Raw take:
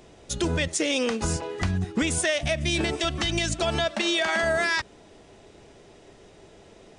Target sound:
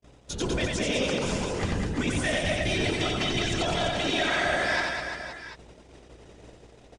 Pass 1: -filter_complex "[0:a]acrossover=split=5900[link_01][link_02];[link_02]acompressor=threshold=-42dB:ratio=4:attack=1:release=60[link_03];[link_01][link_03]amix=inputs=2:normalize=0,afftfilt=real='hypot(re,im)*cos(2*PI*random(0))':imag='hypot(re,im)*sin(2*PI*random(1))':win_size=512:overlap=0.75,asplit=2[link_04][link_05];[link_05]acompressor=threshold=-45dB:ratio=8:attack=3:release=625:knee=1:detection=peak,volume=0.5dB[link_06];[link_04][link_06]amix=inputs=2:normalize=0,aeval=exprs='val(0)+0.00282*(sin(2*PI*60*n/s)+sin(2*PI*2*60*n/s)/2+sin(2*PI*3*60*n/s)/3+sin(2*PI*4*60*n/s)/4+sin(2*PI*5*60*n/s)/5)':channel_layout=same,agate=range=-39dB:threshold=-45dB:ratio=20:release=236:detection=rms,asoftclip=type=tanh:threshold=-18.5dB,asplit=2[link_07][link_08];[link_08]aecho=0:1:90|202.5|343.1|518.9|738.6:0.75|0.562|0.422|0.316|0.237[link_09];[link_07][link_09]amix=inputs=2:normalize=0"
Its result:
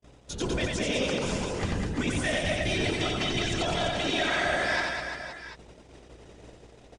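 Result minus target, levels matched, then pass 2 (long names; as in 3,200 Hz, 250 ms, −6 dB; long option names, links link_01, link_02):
downward compressor: peak gain reduction +8 dB
-filter_complex "[0:a]acrossover=split=5900[link_01][link_02];[link_02]acompressor=threshold=-42dB:ratio=4:attack=1:release=60[link_03];[link_01][link_03]amix=inputs=2:normalize=0,afftfilt=real='hypot(re,im)*cos(2*PI*random(0))':imag='hypot(re,im)*sin(2*PI*random(1))':win_size=512:overlap=0.75,asplit=2[link_04][link_05];[link_05]acompressor=threshold=-36dB:ratio=8:attack=3:release=625:knee=1:detection=peak,volume=0.5dB[link_06];[link_04][link_06]amix=inputs=2:normalize=0,aeval=exprs='val(0)+0.00282*(sin(2*PI*60*n/s)+sin(2*PI*2*60*n/s)/2+sin(2*PI*3*60*n/s)/3+sin(2*PI*4*60*n/s)/4+sin(2*PI*5*60*n/s)/5)':channel_layout=same,agate=range=-39dB:threshold=-45dB:ratio=20:release=236:detection=rms,asoftclip=type=tanh:threshold=-18.5dB,asplit=2[link_07][link_08];[link_08]aecho=0:1:90|202.5|343.1|518.9|738.6:0.75|0.562|0.422|0.316|0.237[link_09];[link_07][link_09]amix=inputs=2:normalize=0"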